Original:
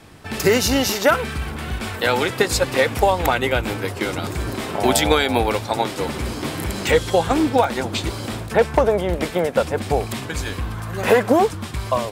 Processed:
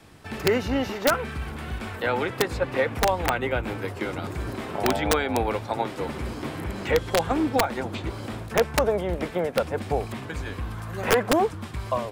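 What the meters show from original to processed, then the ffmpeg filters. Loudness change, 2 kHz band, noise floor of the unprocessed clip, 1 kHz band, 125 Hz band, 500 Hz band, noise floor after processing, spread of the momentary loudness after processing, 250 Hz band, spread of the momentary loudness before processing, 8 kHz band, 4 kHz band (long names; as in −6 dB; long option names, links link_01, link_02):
−6.0 dB, −6.0 dB, −32 dBFS, −5.5 dB, −5.5 dB, −6.0 dB, −38 dBFS, 10 LU, −5.5 dB, 10 LU, −9.0 dB, −8.5 dB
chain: -filter_complex "[0:a]acrossover=split=290|2700[link_01][link_02][link_03];[link_03]acompressor=threshold=-43dB:ratio=6[link_04];[link_01][link_02][link_04]amix=inputs=3:normalize=0,aeval=exprs='(mod(2*val(0)+1,2)-1)/2':channel_layout=same,volume=-5.5dB"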